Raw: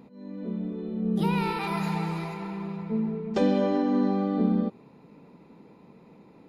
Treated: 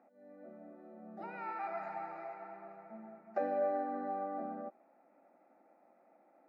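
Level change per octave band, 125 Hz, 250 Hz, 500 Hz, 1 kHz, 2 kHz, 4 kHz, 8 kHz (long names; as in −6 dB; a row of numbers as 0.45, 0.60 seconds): below −30 dB, −22.0 dB, −8.5 dB, −6.0 dB, −11.5 dB, below −30 dB, can't be measured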